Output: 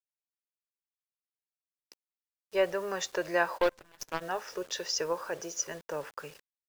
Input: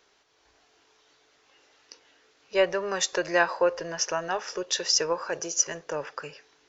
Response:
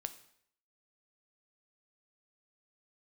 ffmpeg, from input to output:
-filter_complex "[0:a]highshelf=frequency=2800:gain=-6.5,acrusher=bits=7:mix=0:aa=0.000001,asplit=3[link_01][link_02][link_03];[link_01]afade=type=out:start_time=3.57:duration=0.02[link_04];[link_02]aeval=exprs='0.237*(cos(1*acos(clip(val(0)/0.237,-1,1)))-cos(1*PI/2))+0.0168*(cos(4*acos(clip(val(0)/0.237,-1,1)))-cos(4*PI/2))+0.0376*(cos(7*acos(clip(val(0)/0.237,-1,1)))-cos(7*PI/2))':channel_layout=same,afade=type=in:start_time=3.57:duration=0.02,afade=type=out:start_time=4.2:duration=0.02[link_05];[link_03]afade=type=in:start_time=4.2:duration=0.02[link_06];[link_04][link_05][link_06]amix=inputs=3:normalize=0,volume=-4dB"

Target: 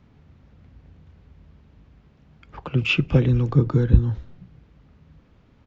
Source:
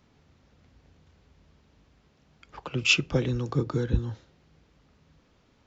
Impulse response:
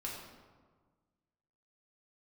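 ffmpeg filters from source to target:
-filter_complex "[0:a]bass=frequency=250:gain=8,treble=frequency=4000:gain=-11,acrossover=split=4000[link_01][link_02];[link_02]acompressor=threshold=-45dB:ratio=4:attack=1:release=60[link_03];[link_01][link_03]amix=inputs=2:normalize=0,asplit=3[link_04][link_05][link_06];[link_05]adelay=235,afreqshift=-120,volume=-24dB[link_07];[link_06]adelay=470,afreqshift=-240,volume=-32.6dB[link_08];[link_04][link_07][link_08]amix=inputs=3:normalize=0,volume=3dB"

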